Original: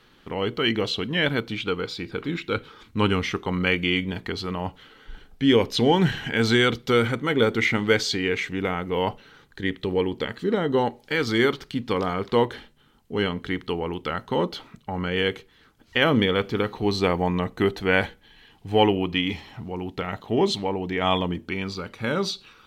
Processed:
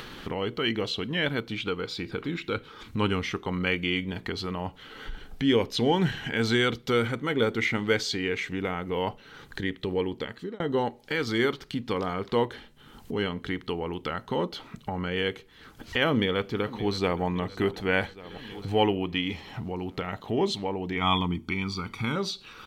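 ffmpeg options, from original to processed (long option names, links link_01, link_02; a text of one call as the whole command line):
ffmpeg -i in.wav -filter_complex "[0:a]asplit=2[link_01][link_02];[link_02]afade=type=in:start_time=16.09:duration=0.01,afade=type=out:start_time=17.23:duration=0.01,aecho=0:1:570|1140|1710|2280|2850:0.141254|0.0776896|0.0427293|0.0235011|0.0129256[link_03];[link_01][link_03]amix=inputs=2:normalize=0,asettb=1/sr,asplit=3[link_04][link_05][link_06];[link_04]atrim=end=20.964[link_07];[link_05]atrim=start=20.96:end=22.16,asetpts=PTS-STARTPTS,afade=type=in:duration=0.004:curve=qsin,afade=type=out:start_time=1.196:duration=0.004:curve=qsin,aecho=1:1:0.9:0.82,atrim=end_sample=52920[link_08];[link_06]atrim=start=22.156[link_09];[link_07][link_08]acrossfade=duration=0.004:curve1=hsin:curve2=qsin[link_10];[link_10][link_09]acrossfade=duration=0.004:curve1=qsin:curve2=hsin,asplit=2[link_11][link_12];[link_11]atrim=end=10.6,asetpts=PTS-STARTPTS,afade=type=out:start_time=10.11:duration=0.49[link_13];[link_12]atrim=start=10.6,asetpts=PTS-STARTPTS,afade=type=in:duration=0.004:curve=hsin[link_14];[link_13][link_14]concat=n=2:v=0:a=1,acompressor=mode=upward:threshold=-22dB:ratio=2.5,volume=-4.5dB" out.wav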